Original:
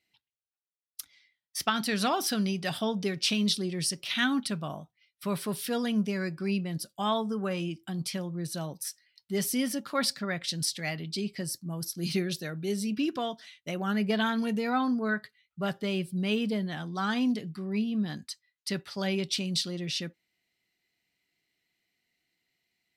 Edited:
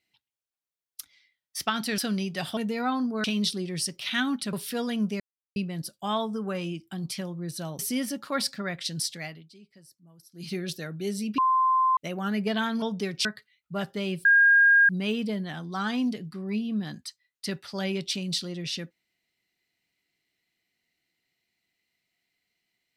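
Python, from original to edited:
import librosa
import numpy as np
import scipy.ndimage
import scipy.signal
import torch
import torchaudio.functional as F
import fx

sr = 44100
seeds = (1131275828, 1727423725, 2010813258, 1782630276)

y = fx.edit(x, sr, fx.cut(start_s=1.98, length_s=0.28),
    fx.swap(start_s=2.85, length_s=0.43, other_s=14.45, other_length_s=0.67),
    fx.cut(start_s=4.57, length_s=0.92),
    fx.silence(start_s=6.16, length_s=0.36),
    fx.cut(start_s=8.75, length_s=0.67),
    fx.fade_down_up(start_s=10.7, length_s=1.64, db=-20.0, fade_s=0.42),
    fx.bleep(start_s=13.01, length_s=0.59, hz=1040.0, db=-19.0),
    fx.insert_tone(at_s=16.12, length_s=0.64, hz=1620.0, db=-14.5), tone=tone)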